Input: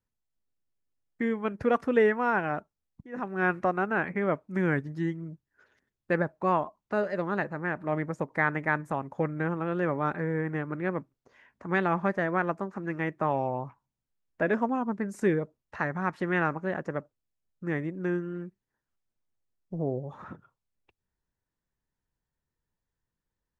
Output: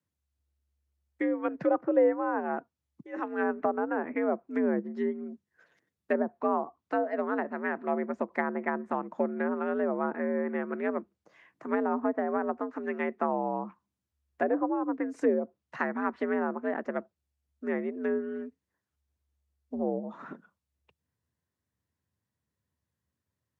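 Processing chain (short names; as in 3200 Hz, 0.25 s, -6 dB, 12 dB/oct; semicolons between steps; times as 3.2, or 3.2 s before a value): frequency shift +69 Hz; treble ducked by the level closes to 840 Hz, closed at -23 dBFS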